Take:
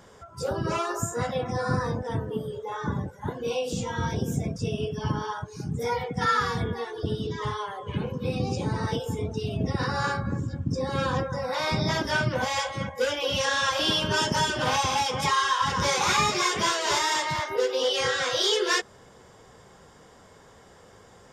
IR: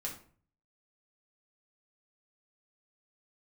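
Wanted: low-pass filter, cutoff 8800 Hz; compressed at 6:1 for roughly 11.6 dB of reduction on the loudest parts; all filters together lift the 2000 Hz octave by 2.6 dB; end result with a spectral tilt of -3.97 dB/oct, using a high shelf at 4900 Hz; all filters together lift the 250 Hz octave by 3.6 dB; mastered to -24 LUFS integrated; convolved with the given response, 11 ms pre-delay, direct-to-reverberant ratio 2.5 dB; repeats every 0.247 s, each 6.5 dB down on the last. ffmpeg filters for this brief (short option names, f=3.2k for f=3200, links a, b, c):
-filter_complex "[0:a]lowpass=8.8k,equalizer=f=250:t=o:g=5,equalizer=f=2k:t=o:g=4.5,highshelf=f=4.9k:g=-8,acompressor=threshold=-32dB:ratio=6,aecho=1:1:247|494|741|988|1235|1482:0.473|0.222|0.105|0.0491|0.0231|0.0109,asplit=2[a][b];[1:a]atrim=start_sample=2205,adelay=11[c];[b][c]afir=irnorm=-1:irlink=0,volume=-2.5dB[d];[a][d]amix=inputs=2:normalize=0,volume=8dB"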